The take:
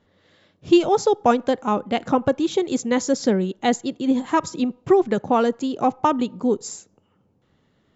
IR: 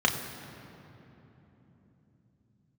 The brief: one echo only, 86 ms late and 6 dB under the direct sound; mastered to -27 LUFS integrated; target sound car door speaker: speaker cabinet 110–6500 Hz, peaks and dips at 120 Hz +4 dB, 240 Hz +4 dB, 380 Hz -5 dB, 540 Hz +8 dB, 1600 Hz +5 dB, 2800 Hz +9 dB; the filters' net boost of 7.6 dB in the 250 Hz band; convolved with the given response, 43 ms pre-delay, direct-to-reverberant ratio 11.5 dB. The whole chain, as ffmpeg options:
-filter_complex "[0:a]equalizer=f=250:t=o:g=6.5,aecho=1:1:86:0.501,asplit=2[a][b];[1:a]atrim=start_sample=2205,adelay=43[c];[b][c]afir=irnorm=-1:irlink=0,volume=-25dB[d];[a][d]amix=inputs=2:normalize=0,highpass=110,equalizer=f=120:t=q:w=4:g=4,equalizer=f=240:t=q:w=4:g=4,equalizer=f=380:t=q:w=4:g=-5,equalizer=f=540:t=q:w=4:g=8,equalizer=f=1.6k:t=q:w=4:g=5,equalizer=f=2.8k:t=q:w=4:g=9,lowpass=f=6.5k:w=0.5412,lowpass=f=6.5k:w=1.3066,volume=-12.5dB"

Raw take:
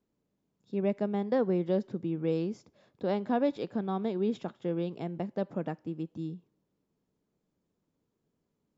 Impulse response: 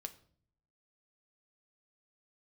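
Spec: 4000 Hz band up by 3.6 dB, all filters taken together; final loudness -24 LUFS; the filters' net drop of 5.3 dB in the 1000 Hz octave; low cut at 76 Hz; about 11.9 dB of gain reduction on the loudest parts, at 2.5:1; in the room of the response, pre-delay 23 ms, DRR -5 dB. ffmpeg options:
-filter_complex "[0:a]highpass=76,equalizer=f=1k:t=o:g=-8.5,equalizer=f=4k:t=o:g=5,acompressor=threshold=-43dB:ratio=2.5,asplit=2[a][b];[1:a]atrim=start_sample=2205,adelay=23[c];[b][c]afir=irnorm=-1:irlink=0,volume=8.5dB[d];[a][d]amix=inputs=2:normalize=0,volume=13.5dB"

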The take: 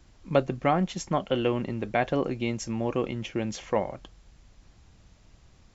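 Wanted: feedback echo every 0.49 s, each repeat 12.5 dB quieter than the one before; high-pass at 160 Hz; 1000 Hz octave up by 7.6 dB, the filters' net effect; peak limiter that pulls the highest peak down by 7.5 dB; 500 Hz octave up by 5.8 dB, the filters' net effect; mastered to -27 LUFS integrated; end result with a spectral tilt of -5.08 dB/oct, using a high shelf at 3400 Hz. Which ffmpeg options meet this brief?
-af "highpass=160,equalizer=f=500:t=o:g=4.5,equalizer=f=1k:t=o:g=9,highshelf=f=3.4k:g=-3,alimiter=limit=-10.5dB:level=0:latency=1,aecho=1:1:490|980|1470:0.237|0.0569|0.0137,volume=-1dB"

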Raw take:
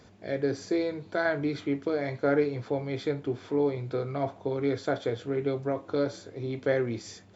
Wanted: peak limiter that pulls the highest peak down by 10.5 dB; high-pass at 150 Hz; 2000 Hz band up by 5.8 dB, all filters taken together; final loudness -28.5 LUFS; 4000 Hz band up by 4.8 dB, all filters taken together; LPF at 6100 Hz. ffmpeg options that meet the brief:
-af "highpass=150,lowpass=6.1k,equalizer=f=2k:t=o:g=7,equalizer=f=4k:t=o:g=4.5,volume=4.5dB,alimiter=limit=-17.5dB:level=0:latency=1"

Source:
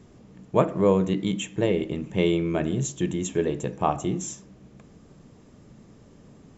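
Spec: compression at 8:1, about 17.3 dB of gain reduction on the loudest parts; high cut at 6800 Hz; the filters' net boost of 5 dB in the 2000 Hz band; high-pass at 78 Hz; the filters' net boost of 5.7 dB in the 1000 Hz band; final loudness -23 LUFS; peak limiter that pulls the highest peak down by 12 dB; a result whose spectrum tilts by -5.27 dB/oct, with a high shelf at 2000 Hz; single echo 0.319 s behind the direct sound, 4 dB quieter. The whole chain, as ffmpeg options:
-af "highpass=78,lowpass=6.8k,equalizer=f=1k:t=o:g=6.5,highshelf=f=2k:g=-3,equalizer=f=2k:t=o:g=6.5,acompressor=threshold=-30dB:ratio=8,alimiter=level_in=3.5dB:limit=-24dB:level=0:latency=1,volume=-3.5dB,aecho=1:1:319:0.631,volume=14.5dB"

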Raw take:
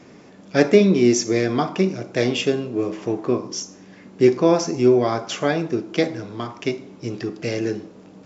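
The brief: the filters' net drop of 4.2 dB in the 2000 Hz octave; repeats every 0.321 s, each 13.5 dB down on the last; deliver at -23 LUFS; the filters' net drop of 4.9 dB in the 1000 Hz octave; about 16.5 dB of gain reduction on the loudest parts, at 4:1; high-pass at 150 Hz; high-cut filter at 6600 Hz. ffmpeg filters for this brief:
-af "highpass=150,lowpass=6.6k,equalizer=f=1k:t=o:g=-6.5,equalizer=f=2k:t=o:g=-3.5,acompressor=threshold=-31dB:ratio=4,aecho=1:1:321|642:0.211|0.0444,volume=11dB"

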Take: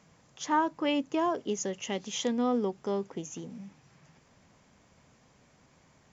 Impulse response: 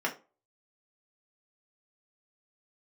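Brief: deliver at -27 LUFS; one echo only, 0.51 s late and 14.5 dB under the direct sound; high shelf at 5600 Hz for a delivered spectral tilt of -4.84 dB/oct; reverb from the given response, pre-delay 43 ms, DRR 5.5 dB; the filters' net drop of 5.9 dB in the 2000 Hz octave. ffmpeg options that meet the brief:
-filter_complex "[0:a]equalizer=f=2k:t=o:g=-7.5,highshelf=f=5.6k:g=-4.5,aecho=1:1:510:0.188,asplit=2[a][b];[1:a]atrim=start_sample=2205,adelay=43[c];[b][c]afir=irnorm=-1:irlink=0,volume=-13.5dB[d];[a][d]amix=inputs=2:normalize=0,volume=3.5dB"

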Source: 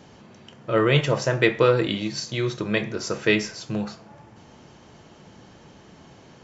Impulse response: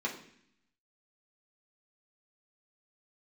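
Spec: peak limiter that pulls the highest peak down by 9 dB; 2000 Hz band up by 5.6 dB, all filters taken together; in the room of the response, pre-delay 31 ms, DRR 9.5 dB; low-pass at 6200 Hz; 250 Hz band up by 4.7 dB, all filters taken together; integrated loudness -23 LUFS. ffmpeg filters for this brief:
-filter_complex "[0:a]lowpass=6.2k,equalizer=f=250:t=o:g=7,equalizer=f=2k:t=o:g=6.5,alimiter=limit=-10dB:level=0:latency=1,asplit=2[a][b];[1:a]atrim=start_sample=2205,adelay=31[c];[b][c]afir=irnorm=-1:irlink=0,volume=-14.5dB[d];[a][d]amix=inputs=2:normalize=0,volume=-0.5dB"

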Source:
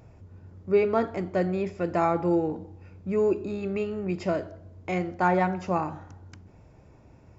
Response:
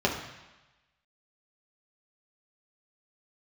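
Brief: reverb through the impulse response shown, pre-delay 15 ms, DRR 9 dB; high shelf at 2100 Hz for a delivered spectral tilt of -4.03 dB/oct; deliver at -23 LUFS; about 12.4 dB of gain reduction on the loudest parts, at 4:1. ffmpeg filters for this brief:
-filter_complex "[0:a]highshelf=f=2.1k:g=6.5,acompressor=threshold=-32dB:ratio=4,asplit=2[a][b];[1:a]atrim=start_sample=2205,adelay=15[c];[b][c]afir=irnorm=-1:irlink=0,volume=-22dB[d];[a][d]amix=inputs=2:normalize=0,volume=12dB"

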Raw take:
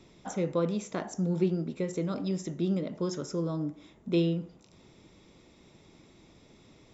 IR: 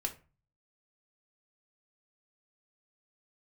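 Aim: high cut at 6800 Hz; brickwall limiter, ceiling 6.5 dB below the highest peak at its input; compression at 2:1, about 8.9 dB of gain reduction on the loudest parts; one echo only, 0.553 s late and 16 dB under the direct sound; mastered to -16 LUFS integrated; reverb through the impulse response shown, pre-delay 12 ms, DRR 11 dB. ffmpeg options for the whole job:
-filter_complex "[0:a]lowpass=6.8k,acompressor=threshold=-38dB:ratio=2,alimiter=level_in=6.5dB:limit=-24dB:level=0:latency=1,volume=-6.5dB,aecho=1:1:553:0.158,asplit=2[a][b];[1:a]atrim=start_sample=2205,adelay=12[c];[b][c]afir=irnorm=-1:irlink=0,volume=-12.5dB[d];[a][d]amix=inputs=2:normalize=0,volume=24dB"

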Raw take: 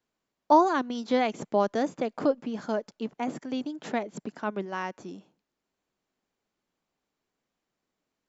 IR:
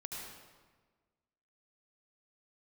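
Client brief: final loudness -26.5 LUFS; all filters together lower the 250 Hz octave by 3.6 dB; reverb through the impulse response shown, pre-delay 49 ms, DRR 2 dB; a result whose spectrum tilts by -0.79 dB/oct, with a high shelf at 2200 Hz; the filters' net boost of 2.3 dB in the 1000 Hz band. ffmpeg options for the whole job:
-filter_complex "[0:a]equalizer=f=250:t=o:g=-4.5,equalizer=f=1k:t=o:g=4,highshelf=f=2.2k:g=-6.5,asplit=2[a][b];[1:a]atrim=start_sample=2205,adelay=49[c];[b][c]afir=irnorm=-1:irlink=0,volume=-1dB[d];[a][d]amix=inputs=2:normalize=0,volume=-0.5dB"

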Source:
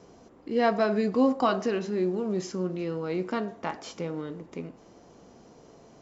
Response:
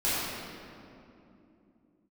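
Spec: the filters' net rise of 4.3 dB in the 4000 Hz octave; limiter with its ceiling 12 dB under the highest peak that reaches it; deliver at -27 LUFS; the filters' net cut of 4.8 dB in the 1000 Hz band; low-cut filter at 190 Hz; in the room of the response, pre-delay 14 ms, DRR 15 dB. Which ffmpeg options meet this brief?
-filter_complex "[0:a]highpass=190,equalizer=f=1k:t=o:g=-7.5,equalizer=f=4k:t=o:g=6,alimiter=level_in=2dB:limit=-24dB:level=0:latency=1,volume=-2dB,asplit=2[a][b];[1:a]atrim=start_sample=2205,adelay=14[c];[b][c]afir=irnorm=-1:irlink=0,volume=-27dB[d];[a][d]amix=inputs=2:normalize=0,volume=8.5dB"

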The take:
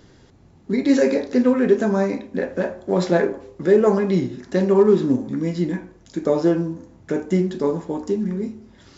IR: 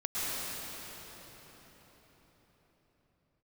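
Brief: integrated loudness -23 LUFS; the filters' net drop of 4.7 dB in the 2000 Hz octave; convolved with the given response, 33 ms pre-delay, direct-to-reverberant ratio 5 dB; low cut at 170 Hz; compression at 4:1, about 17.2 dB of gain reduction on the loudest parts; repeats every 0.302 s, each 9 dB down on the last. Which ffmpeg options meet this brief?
-filter_complex "[0:a]highpass=170,equalizer=f=2k:t=o:g=-6,acompressor=threshold=-32dB:ratio=4,aecho=1:1:302|604|906|1208:0.355|0.124|0.0435|0.0152,asplit=2[a][b];[1:a]atrim=start_sample=2205,adelay=33[c];[b][c]afir=irnorm=-1:irlink=0,volume=-13.5dB[d];[a][d]amix=inputs=2:normalize=0,volume=9.5dB"

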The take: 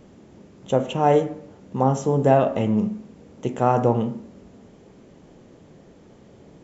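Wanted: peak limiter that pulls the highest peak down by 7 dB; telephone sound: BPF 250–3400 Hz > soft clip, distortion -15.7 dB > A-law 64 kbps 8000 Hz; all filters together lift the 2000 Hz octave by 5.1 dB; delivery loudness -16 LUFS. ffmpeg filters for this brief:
-af "equalizer=f=2k:t=o:g=7.5,alimiter=limit=-10.5dB:level=0:latency=1,highpass=250,lowpass=3.4k,asoftclip=threshold=-15.5dB,volume=11dB" -ar 8000 -c:a pcm_alaw

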